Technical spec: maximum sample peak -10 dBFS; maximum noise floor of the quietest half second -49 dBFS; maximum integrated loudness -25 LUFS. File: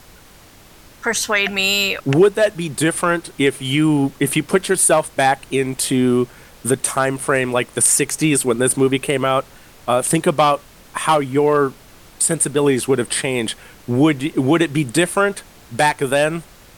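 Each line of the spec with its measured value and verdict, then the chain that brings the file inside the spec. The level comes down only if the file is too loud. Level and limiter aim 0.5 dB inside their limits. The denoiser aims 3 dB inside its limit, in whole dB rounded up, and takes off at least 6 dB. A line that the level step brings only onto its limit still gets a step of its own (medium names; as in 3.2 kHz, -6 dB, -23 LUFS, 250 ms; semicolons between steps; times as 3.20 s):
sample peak -4.0 dBFS: fail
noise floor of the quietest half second -45 dBFS: fail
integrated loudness -17.5 LUFS: fail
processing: trim -8 dB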